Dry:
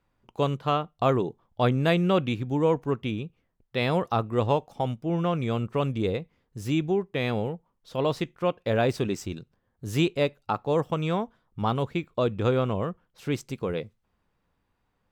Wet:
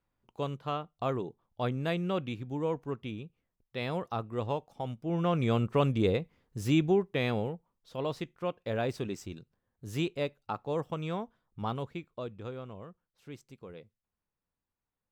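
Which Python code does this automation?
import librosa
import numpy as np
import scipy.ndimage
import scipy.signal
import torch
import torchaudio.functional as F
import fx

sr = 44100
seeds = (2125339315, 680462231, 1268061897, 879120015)

y = fx.gain(x, sr, db=fx.line((4.82, -9.0), (5.45, 0.0), (6.88, 0.0), (7.99, -8.0), (11.71, -8.0), (12.54, -17.5)))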